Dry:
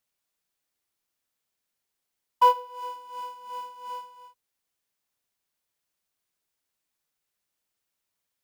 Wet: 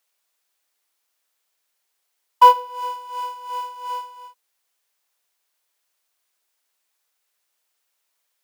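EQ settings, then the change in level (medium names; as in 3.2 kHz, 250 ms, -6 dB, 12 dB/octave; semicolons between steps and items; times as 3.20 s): high-pass 500 Hz 12 dB/octave; +8.5 dB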